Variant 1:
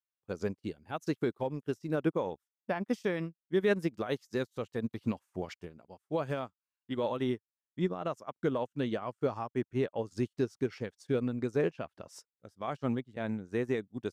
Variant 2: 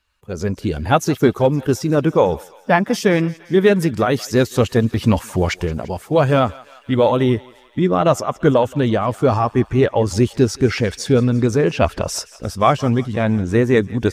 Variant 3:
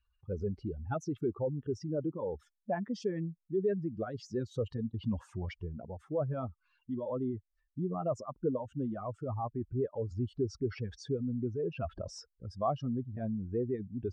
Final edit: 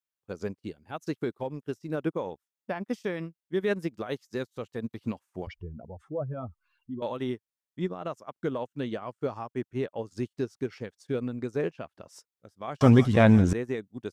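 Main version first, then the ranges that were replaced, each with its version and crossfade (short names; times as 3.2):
1
5.47–7.02 from 3
12.81–13.53 from 2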